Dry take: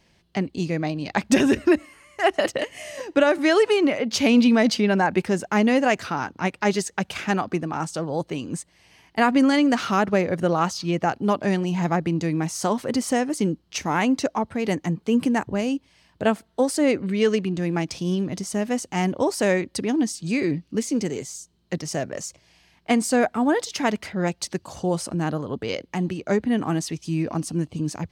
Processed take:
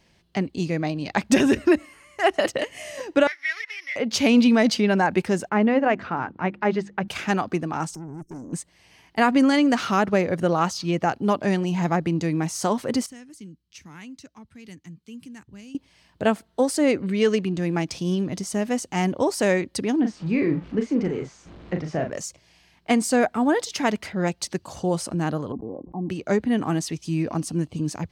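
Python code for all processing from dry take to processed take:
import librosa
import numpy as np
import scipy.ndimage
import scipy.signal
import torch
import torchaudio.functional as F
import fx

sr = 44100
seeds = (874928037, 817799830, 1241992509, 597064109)

y = fx.chain(x, sr, fx.sample_sort(block=8),
    fx.ladder_bandpass(hz=2100.0, resonance_pct=70),
    fx.peak_eq(hz=2100.0, db=9.0, octaves=0.29), at=(3.27, 3.96))
y = fx.chain(y, sr, fx.lowpass(hz=2000.0, slope=12),
    fx.hum_notches(base_hz=50, count=7), at=(5.49, 7.08))
y = fx.chain(y, sr, fx.brickwall_bandstop(low_hz=420.0, high_hz=5300.0),
    fx.tube_stage(drive_db=33.0, bias=0.6), at=(7.94, 8.53))
y = fx.chain(y, sr, fx.tone_stack(knobs='6-0-2'),
    fx.band_squash(depth_pct=40), at=(13.06, 15.75))
y = fx.chain(y, sr, fx.zero_step(step_db=-37.5),
    fx.lowpass(hz=2100.0, slope=12),
    fx.doubler(ms=38.0, db=-6), at=(20.0, 22.1))
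y = fx.chain(y, sr, fx.sample_sort(block=8),
    fx.cheby_ripple(hz=1100.0, ripple_db=9),
    fx.sustainer(db_per_s=71.0), at=(25.52, 26.1))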